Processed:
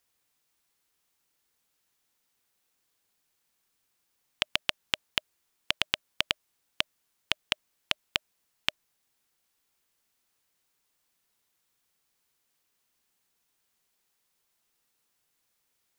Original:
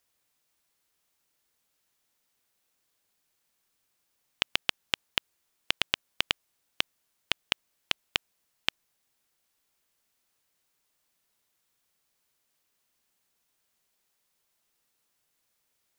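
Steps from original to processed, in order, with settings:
notch filter 610 Hz, Q 12

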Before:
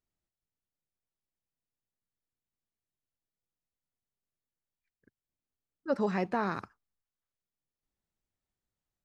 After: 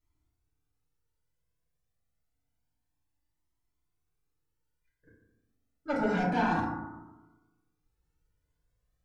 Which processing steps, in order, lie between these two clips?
low-shelf EQ 70 Hz +11 dB
in parallel at −10 dB: sine wavefolder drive 10 dB, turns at −18 dBFS
on the sum: feedback delay network reverb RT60 1.1 s, low-frequency decay 1.2×, high-frequency decay 0.3×, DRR −6.5 dB
flanger whose copies keep moving one way rising 0.28 Hz
level −4.5 dB

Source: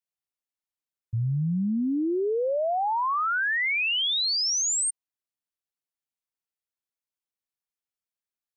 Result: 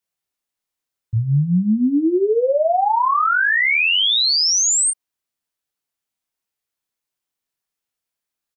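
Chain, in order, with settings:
double-tracking delay 28 ms −5 dB
level +7.5 dB

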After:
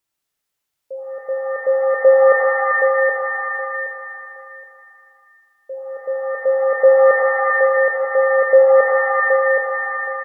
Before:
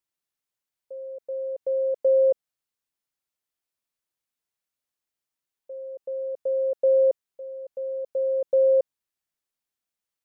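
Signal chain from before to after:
repeating echo 771 ms, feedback 21%, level −6 dB
reverb with rising layers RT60 1.6 s, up +7 semitones, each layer −2 dB, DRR 3 dB
level +7.5 dB

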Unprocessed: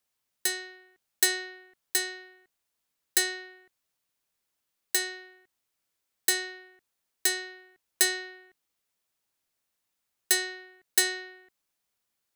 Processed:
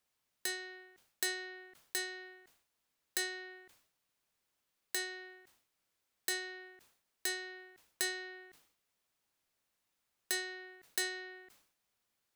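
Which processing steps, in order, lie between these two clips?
downward compressor 2 to 1, threshold −40 dBFS, peak gain reduction 12.5 dB
high-shelf EQ 5,300 Hz −5 dB
level that may fall only so fast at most 92 dB per second
level +1 dB

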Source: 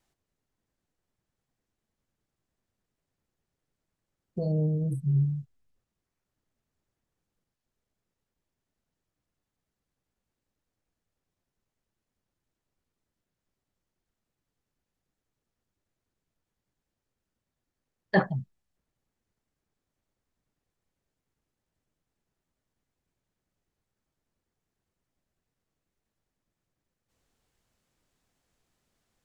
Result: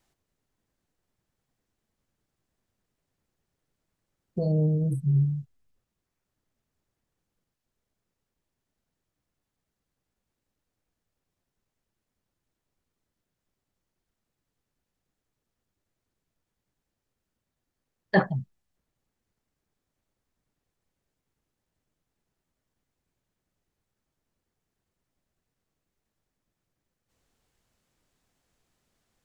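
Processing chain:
speech leveller
level +3.5 dB

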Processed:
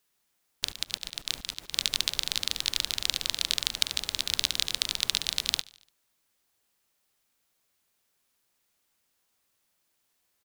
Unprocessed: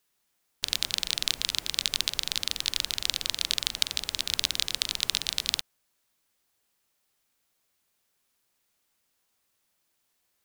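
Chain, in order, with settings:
0:00.68–0:01.74: volume swells 127 ms
repeating echo 73 ms, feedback 58%, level −22.5 dB

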